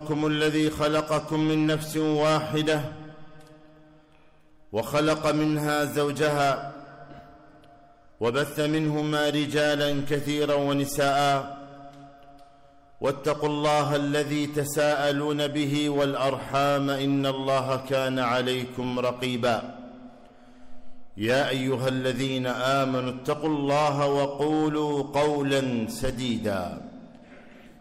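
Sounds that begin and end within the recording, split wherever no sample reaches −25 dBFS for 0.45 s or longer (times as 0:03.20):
0:04.75–0:06.58
0:08.21–0:11.41
0:13.04–0:19.59
0:21.21–0:26.67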